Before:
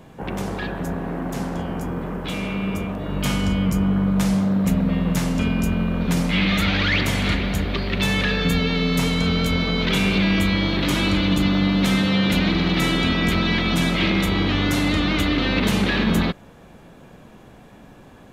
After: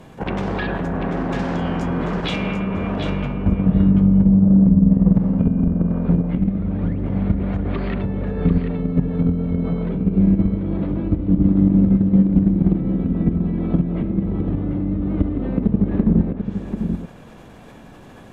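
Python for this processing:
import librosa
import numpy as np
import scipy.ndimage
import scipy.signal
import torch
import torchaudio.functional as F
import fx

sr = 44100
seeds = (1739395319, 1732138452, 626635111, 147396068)

p1 = fx.env_lowpass_down(x, sr, base_hz=320.0, full_db=-15.5)
p2 = fx.peak_eq(p1, sr, hz=6700.0, db=9.0, octaves=2.3, at=(1.39, 2.36))
p3 = fx.level_steps(p2, sr, step_db=10)
p4 = p3 + fx.echo_single(p3, sr, ms=740, db=-7.5, dry=0)
y = p4 * 10.0 ** (7.0 / 20.0)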